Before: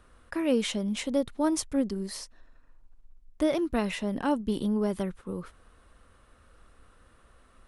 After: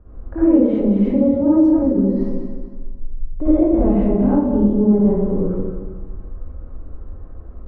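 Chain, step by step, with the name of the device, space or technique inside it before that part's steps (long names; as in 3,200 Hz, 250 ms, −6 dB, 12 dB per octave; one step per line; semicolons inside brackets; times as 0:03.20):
feedback delay that plays each chunk backwards 113 ms, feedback 58%, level −6 dB
0:00.99–0:02.09: high-pass filter 47 Hz
low-shelf EQ 130 Hz +7.5 dB
television next door (downward compressor, threshold −28 dBFS, peak gain reduction 9 dB; low-pass filter 560 Hz 12 dB per octave; convolution reverb RT60 0.75 s, pre-delay 50 ms, DRR −10 dB)
level +6 dB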